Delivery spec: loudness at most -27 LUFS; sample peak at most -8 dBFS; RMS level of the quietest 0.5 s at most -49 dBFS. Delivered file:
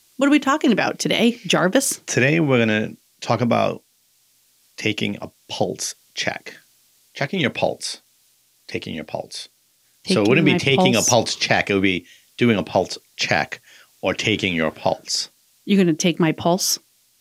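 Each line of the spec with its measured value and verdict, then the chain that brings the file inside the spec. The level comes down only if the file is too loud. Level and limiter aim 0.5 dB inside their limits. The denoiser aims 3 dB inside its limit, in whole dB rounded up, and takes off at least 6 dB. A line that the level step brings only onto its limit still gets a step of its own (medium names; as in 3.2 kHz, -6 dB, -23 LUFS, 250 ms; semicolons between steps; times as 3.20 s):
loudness -20.0 LUFS: fail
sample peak -1.5 dBFS: fail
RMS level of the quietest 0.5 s -61 dBFS: pass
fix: trim -7.5 dB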